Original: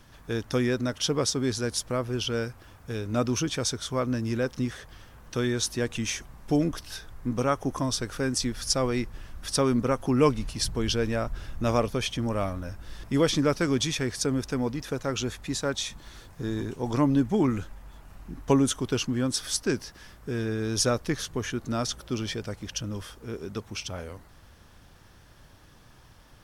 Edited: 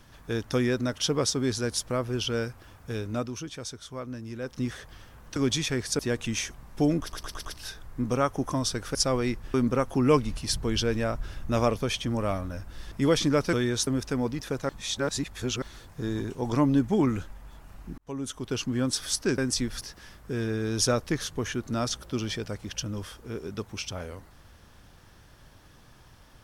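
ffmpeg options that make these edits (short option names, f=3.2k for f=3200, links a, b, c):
-filter_complex "[0:a]asplit=18[a][b][c][d][e][f][g][h][i][j][k][l][m][n][o][p][q][r];[a]atrim=end=3.31,asetpts=PTS-STARTPTS,afade=t=out:st=3:d=0.31:silence=0.334965[s];[b]atrim=start=3.31:end=4.39,asetpts=PTS-STARTPTS,volume=-9.5dB[t];[c]atrim=start=4.39:end=5.362,asetpts=PTS-STARTPTS,afade=t=in:d=0.31:silence=0.334965[u];[d]atrim=start=13.648:end=14.282[v];[e]atrim=start=5.698:end=6.832[w];[f]atrim=start=6.718:end=6.832[x];[g]atrim=start=6.718:end=6.832[y];[h]atrim=start=6.718:end=6.832[z];[i]atrim=start=6.718:end=8.222[aa];[j]atrim=start=8.648:end=9.242[ab];[k]atrim=start=9.658:end=13.652[ac];[l]atrim=start=5.358:end=5.702[ad];[m]atrim=start=14.278:end=15.102[ae];[n]atrim=start=15.098:end=16.032,asetpts=PTS-STARTPTS,areverse[af];[o]atrim=start=16.028:end=18.39,asetpts=PTS-STARTPTS,afade=t=out:st=2.358:d=0.004:c=hsin[ag];[p]atrim=start=18.39:end=19.792,asetpts=PTS-STARTPTS,afade=t=in:d=0.83[ah];[q]atrim=start=8.218:end=8.652[ai];[r]atrim=start=19.788[aj];[s][t][u]concat=n=3:v=0:a=1[ak];[ak][v]acrossfade=d=0.004:c1=hsin:c2=hsin[al];[al][w]acrossfade=d=0.004:c1=hsin:c2=hsin[am];[am][x]acrossfade=d=0.004:c1=hsin:c2=hsin[an];[an][y]acrossfade=d=0.004:c1=hsin:c2=hsin[ao];[ao][z]acrossfade=d=0.004:c1=hsin:c2=hsin[ap];[ap][aa]acrossfade=d=0.004:c1=hsin:c2=hsin[aq];[aq][ab]acrossfade=d=0.004:c1=hsin:c2=hsin[ar];[ar][ac]acrossfade=d=0.004:c1=hsin:c2=hsin[as];[as][ad]acrossfade=d=0.004:c1=hsin:c2=hsin[at];[at][ae]acrossfade=d=0.004:c1=hsin:c2=hsin[au];[au][af]acrossfade=d=0.004:c1=hsin:c2=hsin[av];[ag][ah]concat=n=2:v=0:a=1[aw];[av][aw]acrossfade=d=0.004:c1=hsin:c2=hsin[ax];[ax][ai]acrossfade=d=0.004:c1=hsin:c2=hsin[ay];[ay][aj]acrossfade=d=0.004:c1=hsin:c2=hsin"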